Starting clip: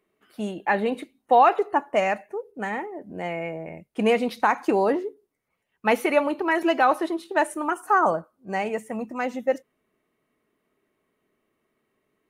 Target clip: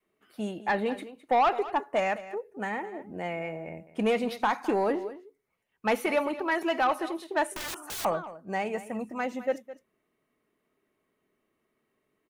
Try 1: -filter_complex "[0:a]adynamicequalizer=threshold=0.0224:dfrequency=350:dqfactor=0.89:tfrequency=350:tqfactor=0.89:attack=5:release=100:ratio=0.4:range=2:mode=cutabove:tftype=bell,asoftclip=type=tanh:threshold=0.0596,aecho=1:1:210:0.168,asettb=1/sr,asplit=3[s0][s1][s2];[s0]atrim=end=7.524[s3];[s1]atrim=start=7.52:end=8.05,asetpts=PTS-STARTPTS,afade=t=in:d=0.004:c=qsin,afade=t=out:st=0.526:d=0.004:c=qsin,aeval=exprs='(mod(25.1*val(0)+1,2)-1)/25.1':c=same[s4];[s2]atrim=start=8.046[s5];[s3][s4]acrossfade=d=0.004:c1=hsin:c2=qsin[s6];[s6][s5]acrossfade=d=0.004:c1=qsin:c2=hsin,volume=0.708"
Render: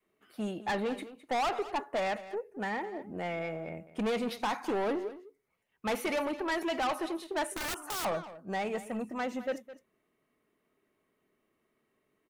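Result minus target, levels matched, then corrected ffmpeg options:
saturation: distortion +9 dB
-filter_complex "[0:a]adynamicequalizer=threshold=0.0224:dfrequency=350:dqfactor=0.89:tfrequency=350:tqfactor=0.89:attack=5:release=100:ratio=0.4:range=2:mode=cutabove:tftype=bell,asoftclip=type=tanh:threshold=0.2,aecho=1:1:210:0.168,asettb=1/sr,asplit=3[s0][s1][s2];[s0]atrim=end=7.524[s3];[s1]atrim=start=7.52:end=8.05,asetpts=PTS-STARTPTS,afade=t=in:d=0.004:c=qsin,afade=t=out:st=0.526:d=0.004:c=qsin,aeval=exprs='(mod(25.1*val(0)+1,2)-1)/25.1':c=same[s4];[s2]atrim=start=8.046[s5];[s3][s4]acrossfade=d=0.004:c1=hsin:c2=qsin[s6];[s6][s5]acrossfade=d=0.004:c1=qsin:c2=hsin,volume=0.708"

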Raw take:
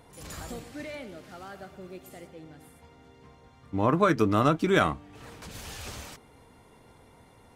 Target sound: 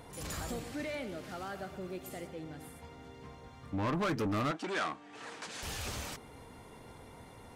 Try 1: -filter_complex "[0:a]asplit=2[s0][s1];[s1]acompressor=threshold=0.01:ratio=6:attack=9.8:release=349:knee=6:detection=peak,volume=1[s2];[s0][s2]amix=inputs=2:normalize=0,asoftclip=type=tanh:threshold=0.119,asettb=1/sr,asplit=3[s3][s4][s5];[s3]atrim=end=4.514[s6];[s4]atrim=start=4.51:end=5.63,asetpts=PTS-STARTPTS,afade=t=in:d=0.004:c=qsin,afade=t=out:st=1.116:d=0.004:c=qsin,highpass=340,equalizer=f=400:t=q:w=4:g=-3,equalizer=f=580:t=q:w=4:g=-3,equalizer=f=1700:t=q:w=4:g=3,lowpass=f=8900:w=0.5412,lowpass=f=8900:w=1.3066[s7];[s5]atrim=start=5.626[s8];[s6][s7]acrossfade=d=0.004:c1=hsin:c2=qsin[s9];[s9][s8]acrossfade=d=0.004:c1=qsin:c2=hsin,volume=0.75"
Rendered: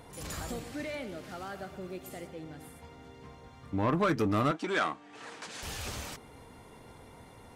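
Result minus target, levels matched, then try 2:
saturation: distortion -7 dB
-filter_complex "[0:a]asplit=2[s0][s1];[s1]acompressor=threshold=0.01:ratio=6:attack=9.8:release=349:knee=6:detection=peak,volume=1[s2];[s0][s2]amix=inputs=2:normalize=0,asoftclip=type=tanh:threshold=0.0473,asettb=1/sr,asplit=3[s3][s4][s5];[s3]atrim=end=4.514[s6];[s4]atrim=start=4.51:end=5.63,asetpts=PTS-STARTPTS,afade=t=in:d=0.004:c=qsin,afade=t=out:st=1.116:d=0.004:c=qsin,highpass=340,equalizer=f=400:t=q:w=4:g=-3,equalizer=f=580:t=q:w=4:g=-3,equalizer=f=1700:t=q:w=4:g=3,lowpass=f=8900:w=0.5412,lowpass=f=8900:w=1.3066[s7];[s5]atrim=start=5.626[s8];[s6][s7]acrossfade=d=0.004:c1=hsin:c2=qsin[s9];[s9][s8]acrossfade=d=0.004:c1=qsin:c2=hsin,volume=0.75"

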